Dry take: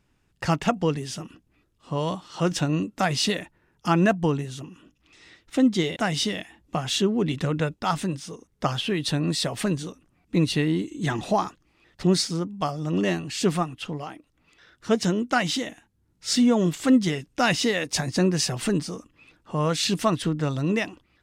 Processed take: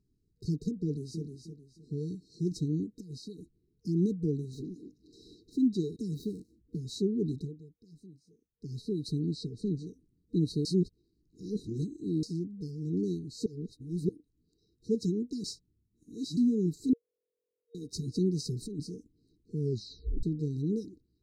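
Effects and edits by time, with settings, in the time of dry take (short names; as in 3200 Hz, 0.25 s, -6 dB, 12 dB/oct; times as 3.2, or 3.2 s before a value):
0.83–1.23 echo throw 0.31 s, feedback 30%, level -7 dB
2.98–3.39 compressor 16:1, threshold -30 dBFS
4.53–5.56 overdrive pedal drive 29 dB, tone 1800 Hz, clips at -22.5 dBFS
6.14–6.78 median filter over 9 samples
7.36–8.78 dip -17.5 dB, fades 0.19 s
9.29–9.87 air absorption 85 m
10.65–12.23 reverse
13.46–14.09 reverse
15.44–16.37 reverse
16.93–17.75 bleep 496 Hz -21 dBFS
18.41–18.87 negative-ratio compressor -26 dBFS, ratio -0.5
19.6 tape stop 0.63 s
whole clip: FFT band-reject 470–3800 Hz; tone controls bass +1 dB, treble -10 dB; gain -7 dB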